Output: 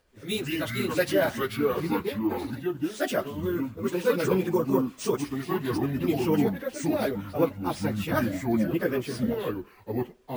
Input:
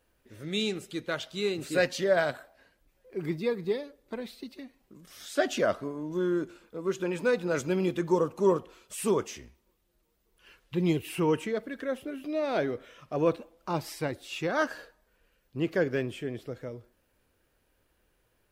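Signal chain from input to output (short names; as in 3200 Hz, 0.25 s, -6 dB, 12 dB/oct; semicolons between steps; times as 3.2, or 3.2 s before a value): echoes that change speed 0.133 s, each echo -5 st, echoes 2; sample-and-hold 3×; plain phase-vocoder stretch 0.56×; gain +4.5 dB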